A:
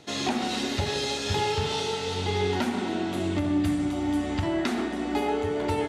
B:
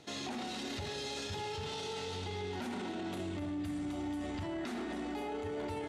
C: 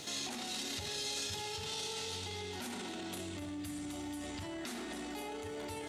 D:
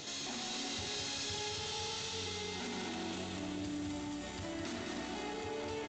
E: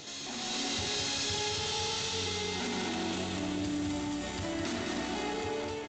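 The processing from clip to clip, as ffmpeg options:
ffmpeg -i in.wav -af "alimiter=level_in=2.5dB:limit=-24dB:level=0:latency=1:release=12,volume=-2.5dB,volume=-5.5dB" out.wav
ffmpeg -i in.wav -af "alimiter=level_in=19dB:limit=-24dB:level=0:latency=1,volume=-19dB,crystalizer=i=4:c=0,volume=6dB" out.wav
ffmpeg -i in.wav -af "aresample=16000,asoftclip=type=hard:threshold=-40dB,aresample=44100,aecho=1:1:210|378|512.4|619.9|705.9:0.631|0.398|0.251|0.158|0.1,volume=1dB" out.wav
ffmpeg -i in.wav -af "dynaudnorm=framelen=120:gausssize=7:maxgain=6.5dB" out.wav

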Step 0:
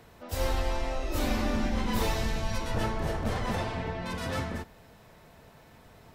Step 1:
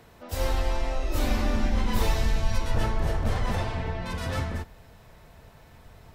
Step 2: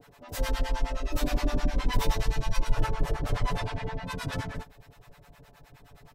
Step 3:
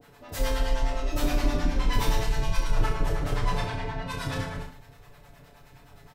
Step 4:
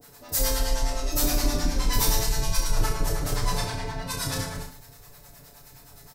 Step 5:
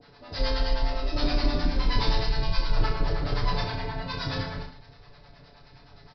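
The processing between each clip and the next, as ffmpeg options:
ffmpeg -i in.wav -af "asubboost=boost=2.5:cutoff=120,volume=1dB" out.wav
ffmpeg -i in.wav -filter_complex "[0:a]aecho=1:1:7:0.92,acrossover=split=630[link_01][link_02];[link_01]aeval=exprs='val(0)*(1-1/2+1/2*cos(2*PI*9.6*n/s))':channel_layout=same[link_03];[link_02]aeval=exprs='val(0)*(1-1/2-1/2*cos(2*PI*9.6*n/s))':channel_layout=same[link_04];[link_03][link_04]amix=inputs=2:normalize=0" out.wav
ffmpeg -i in.wav -af "aecho=1:1:30|64.5|104.2|149.8|202.3:0.631|0.398|0.251|0.158|0.1" out.wav
ffmpeg -i in.wav -af "aexciter=amount=5.3:drive=2.9:freq=4300" out.wav
ffmpeg -i in.wav -af "aresample=11025,aresample=44100" out.wav

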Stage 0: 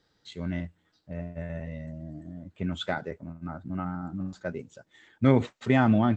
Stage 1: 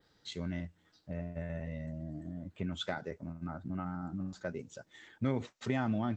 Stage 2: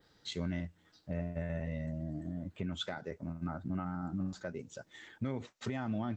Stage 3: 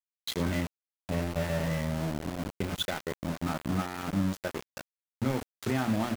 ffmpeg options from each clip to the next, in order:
ffmpeg -i in.wav -af "adynamicequalizer=threshold=0.00112:dfrequency=5700:dqfactor=1.8:tfrequency=5700:tqfactor=1.8:attack=5:release=100:ratio=0.375:range=3.5:mode=boostabove:tftype=bell,acompressor=threshold=-40dB:ratio=2,volume=1dB" out.wav
ffmpeg -i in.wav -af "alimiter=level_in=5dB:limit=-24dB:level=0:latency=1:release=413,volume=-5dB,volume=2.5dB" out.wav
ffmpeg -i in.wav -af "bandreject=frequency=60:width_type=h:width=6,bandreject=frequency=120:width_type=h:width=6,bandreject=frequency=180:width_type=h:width=6,bandreject=frequency=240:width_type=h:width=6,aecho=1:1:31|80:0.335|0.178,aeval=exprs='val(0)*gte(abs(val(0)),0.0119)':channel_layout=same,volume=7.5dB" out.wav

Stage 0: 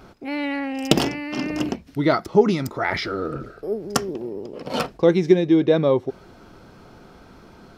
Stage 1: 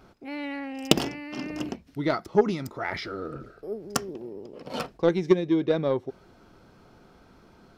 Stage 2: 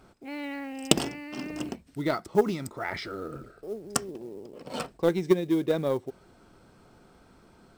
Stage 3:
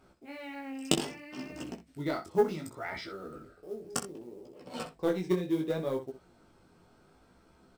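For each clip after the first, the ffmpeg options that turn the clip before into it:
ffmpeg -i in.wav -af "aeval=exprs='0.891*(cos(1*acos(clip(val(0)/0.891,-1,1)))-cos(1*PI/2))+0.158*(cos(3*acos(clip(val(0)/0.891,-1,1)))-cos(3*PI/2))':channel_layout=same,volume=-1.5dB" out.wav
ffmpeg -i in.wav -af "equalizer=frequency=8200:width_type=o:width=0.21:gain=14,acrusher=bits=7:mode=log:mix=0:aa=0.000001,volume=-2dB" out.wav
ffmpeg -i in.wav -filter_complex "[0:a]asplit=2[link_01][link_02];[link_02]aecho=0:1:12|63:0.335|0.251[link_03];[link_01][link_03]amix=inputs=2:normalize=0,flanger=delay=15:depth=7.3:speed=0.66,volume=-3dB" out.wav

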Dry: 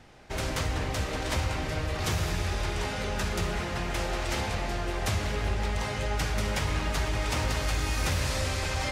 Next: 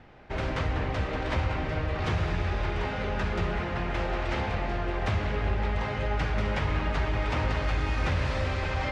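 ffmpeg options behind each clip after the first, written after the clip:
ffmpeg -i in.wav -af "lowpass=2600,volume=1.5dB" out.wav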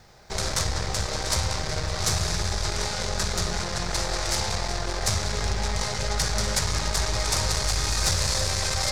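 ffmpeg -i in.wav -af "aeval=exprs='0.15*(cos(1*acos(clip(val(0)/0.15,-1,1)))-cos(1*PI/2))+0.0188*(cos(8*acos(clip(val(0)/0.15,-1,1)))-cos(8*PI/2))':channel_layout=same,aexciter=amount=8.9:drive=7.6:freq=4300,equalizer=frequency=280:width_type=o:width=0.38:gain=-13" out.wav

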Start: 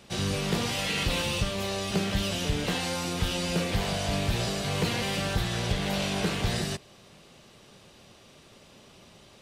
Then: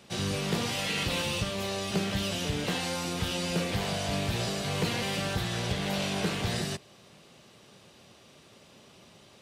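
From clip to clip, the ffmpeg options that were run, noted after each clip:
ffmpeg -i in.wav -af "highpass=79,volume=-1.5dB" out.wav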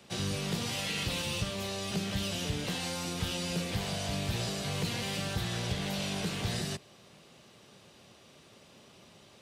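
ffmpeg -i in.wav -filter_complex "[0:a]acrossover=split=200|3000[link_01][link_02][link_03];[link_02]acompressor=threshold=-35dB:ratio=6[link_04];[link_01][link_04][link_03]amix=inputs=3:normalize=0,volume=-1.5dB" out.wav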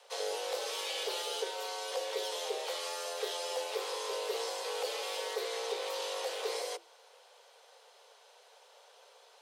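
ffmpeg -i in.wav -af "aeval=exprs='0.106*(cos(1*acos(clip(val(0)/0.106,-1,1)))-cos(1*PI/2))+0.00119*(cos(4*acos(clip(val(0)/0.106,-1,1)))-cos(4*PI/2))+0.000841*(cos(8*acos(clip(val(0)/0.106,-1,1)))-cos(8*PI/2))':channel_layout=same,afreqshift=340,volume=-3dB" out.wav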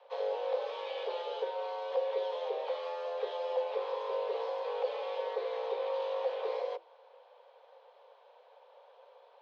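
ffmpeg -i in.wav -af "highpass=490,equalizer=frequency=530:width_type=q:width=4:gain=9,equalizer=frequency=950:width_type=q:width=4:gain=4,equalizer=frequency=1400:width_type=q:width=4:gain=-6,equalizer=frequency=2000:width_type=q:width=4:gain=-7,equalizer=frequency=2800:width_type=q:width=4:gain=-6,lowpass=frequency=2900:width=0.5412,lowpass=frequency=2900:width=1.3066" out.wav

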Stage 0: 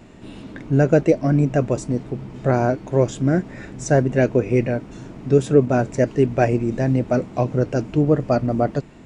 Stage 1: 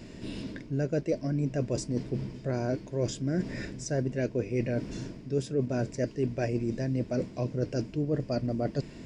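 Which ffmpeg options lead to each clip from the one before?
ffmpeg -i in.wav -af "equalizer=frequency=800:width_type=o:width=0.33:gain=-11,equalizer=frequency=1250:width_type=o:width=0.33:gain=-10,equalizer=frequency=5000:width_type=o:width=0.33:gain=11,areverse,acompressor=threshold=-28dB:ratio=4,areverse" out.wav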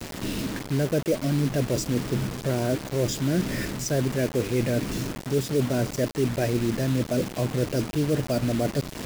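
ffmpeg -i in.wav -filter_complex "[0:a]asplit=2[link_01][link_02];[link_02]alimiter=level_in=3.5dB:limit=-24dB:level=0:latency=1:release=66,volume=-3.5dB,volume=0.5dB[link_03];[link_01][link_03]amix=inputs=2:normalize=0,acrusher=bits=5:mix=0:aa=0.000001,volume=1.5dB" out.wav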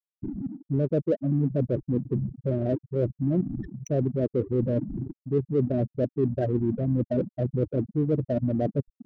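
ffmpeg -i in.wav -af "afftfilt=real='re*gte(hypot(re,im),0.178)':imag='im*gte(hypot(re,im),0.178)':win_size=1024:overlap=0.75,adynamicsmooth=sensitivity=6.5:basefreq=1000" out.wav

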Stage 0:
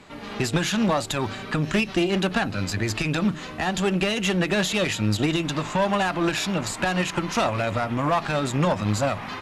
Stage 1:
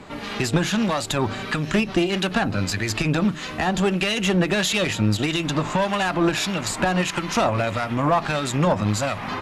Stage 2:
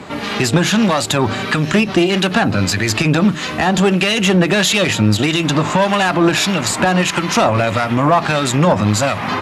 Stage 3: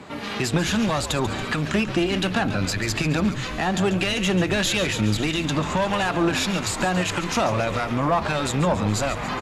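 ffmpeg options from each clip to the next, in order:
ffmpeg -i in.wav -filter_complex "[0:a]asplit=2[link_01][link_02];[link_02]acompressor=threshold=-30dB:ratio=6,volume=2dB[link_03];[link_01][link_03]amix=inputs=2:normalize=0,acrossover=split=1400[link_04][link_05];[link_04]aeval=exprs='val(0)*(1-0.5/2+0.5/2*cos(2*PI*1.6*n/s))':channel_layout=same[link_06];[link_05]aeval=exprs='val(0)*(1-0.5/2-0.5/2*cos(2*PI*1.6*n/s))':channel_layout=same[link_07];[link_06][link_07]amix=inputs=2:normalize=0,volume=1dB" out.wav
ffmpeg -i in.wav -filter_complex "[0:a]highpass=77,asplit=2[link_01][link_02];[link_02]alimiter=limit=-16.5dB:level=0:latency=1:release=35,volume=-1dB[link_03];[link_01][link_03]amix=inputs=2:normalize=0,volume=3.5dB" out.wav
ffmpeg -i in.wav -filter_complex "[0:a]asplit=9[link_01][link_02][link_03][link_04][link_05][link_06][link_07][link_08][link_09];[link_02]adelay=140,afreqshift=-80,volume=-12dB[link_10];[link_03]adelay=280,afreqshift=-160,volume=-15.9dB[link_11];[link_04]adelay=420,afreqshift=-240,volume=-19.8dB[link_12];[link_05]adelay=560,afreqshift=-320,volume=-23.6dB[link_13];[link_06]adelay=700,afreqshift=-400,volume=-27.5dB[link_14];[link_07]adelay=840,afreqshift=-480,volume=-31.4dB[link_15];[link_08]adelay=980,afreqshift=-560,volume=-35.3dB[link_16];[link_09]adelay=1120,afreqshift=-640,volume=-39.1dB[link_17];[link_01][link_10][link_11][link_12][link_13][link_14][link_15][link_16][link_17]amix=inputs=9:normalize=0,volume=-8.5dB" out.wav

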